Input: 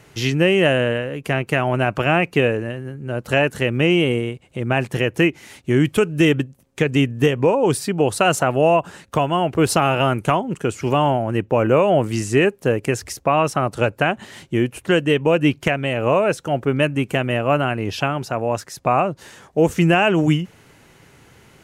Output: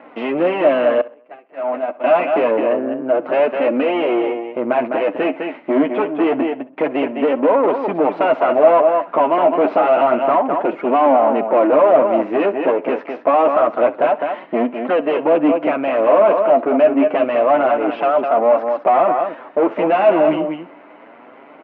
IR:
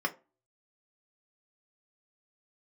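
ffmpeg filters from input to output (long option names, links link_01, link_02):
-filter_complex "[0:a]aeval=exprs='if(lt(val(0),0),0.251*val(0),val(0))':channel_layout=same,flanger=delay=3.5:depth=8.8:regen=25:speed=0.27:shape=triangular,asplit=2[link_01][link_02];[link_02]aecho=0:1:206:0.266[link_03];[link_01][link_03]amix=inputs=2:normalize=0,aeval=exprs='val(0)+0.002*(sin(2*PI*60*n/s)+sin(2*PI*2*60*n/s)/2+sin(2*PI*3*60*n/s)/3+sin(2*PI*4*60*n/s)/4+sin(2*PI*5*60*n/s)/5)':channel_layout=same,asplit=2[link_04][link_05];[link_05]highpass=frequency=720:poles=1,volume=29dB,asoftclip=type=tanh:threshold=-5dB[link_06];[link_04][link_06]amix=inputs=2:normalize=0,lowpass=frequency=1100:poles=1,volume=-6dB,asettb=1/sr,asplit=3[link_07][link_08][link_09];[link_07]atrim=end=1.014[link_10];[link_08]atrim=start=1.01:end=2.04,asetpts=PTS-STARTPTS,afade=type=in:duration=0.004:curve=qsin,afade=type=out:start_time=1.026:duration=0.004:curve=qsin,agate=range=-29dB:threshold=-14dB:ratio=16:detection=peak[link_11];[link_09]atrim=start=2.036[link_12];[link_10][link_11]acrossfade=duration=0.004:curve1=hsin:curve2=qsin[link_13];[link_13][link_12]acrossfade=duration=0.004:curve1=qsin:curve2=hsin,highpass=frequency=240:width=0.5412,highpass=frequency=240:width=1.3066,equalizer=frequency=280:width_type=q:width=4:gain=6,equalizer=frequency=410:width_type=q:width=4:gain=-3,equalizer=frequency=630:width_type=q:width=4:gain=9,equalizer=frequency=1000:width_type=q:width=4:gain=3,equalizer=frequency=1700:width_type=q:width=4:gain=-6,lowpass=frequency=2400:width=0.5412,lowpass=frequency=2400:width=1.3066,asplit=2[link_14][link_15];[link_15]aecho=0:1:65|130:0.112|0.0303[link_16];[link_14][link_16]amix=inputs=2:normalize=0,volume=-2dB"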